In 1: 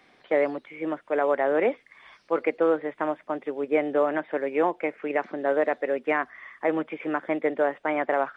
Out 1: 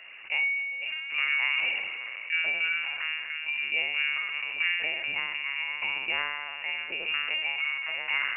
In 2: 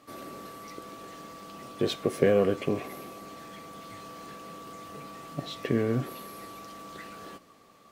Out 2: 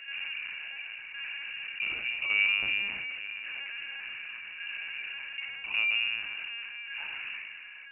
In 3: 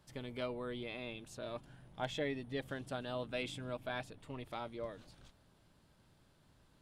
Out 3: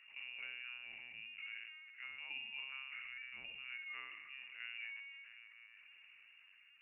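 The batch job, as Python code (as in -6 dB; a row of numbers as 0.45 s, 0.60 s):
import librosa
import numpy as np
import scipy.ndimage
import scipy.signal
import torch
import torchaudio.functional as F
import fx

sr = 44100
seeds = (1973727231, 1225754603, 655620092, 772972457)

y = scipy.signal.sosfilt(scipy.signal.butter(4, 230.0, 'highpass', fs=sr, output='sos'), x)
y = fx.env_lowpass(y, sr, base_hz=940.0, full_db=-20.5)
y = fx.peak_eq(y, sr, hz=2000.0, db=-3.5, octaves=0.97)
y = fx.tremolo_shape(y, sr, shape='saw_down', hz=0.87, depth_pct=80)
y = fx.room_flutter(y, sr, wall_m=5.1, rt60_s=0.66)
y = fx.rev_plate(y, sr, seeds[0], rt60_s=2.9, hf_ratio=0.75, predelay_ms=0, drr_db=14.0)
y = fx.lpc_vocoder(y, sr, seeds[1], excitation='pitch_kept', order=10)
y = fx.freq_invert(y, sr, carrier_hz=2800)
y = fx.env_flatten(y, sr, amount_pct=50)
y = F.gain(torch.from_numpy(y), -7.5).numpy()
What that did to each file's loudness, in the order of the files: -1.0 LU, -1.5 LU, -4.5 LU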